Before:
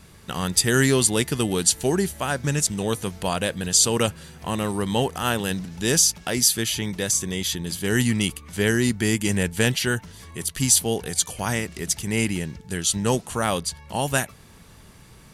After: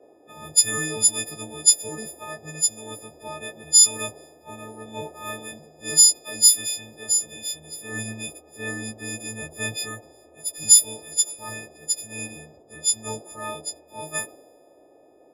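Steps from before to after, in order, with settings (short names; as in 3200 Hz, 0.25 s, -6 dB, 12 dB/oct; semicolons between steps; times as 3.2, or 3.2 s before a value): frequency quantiser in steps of 6 st; band noise 280–710 Hz -32 dBFS; three-band expander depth 70%; gain -15 dB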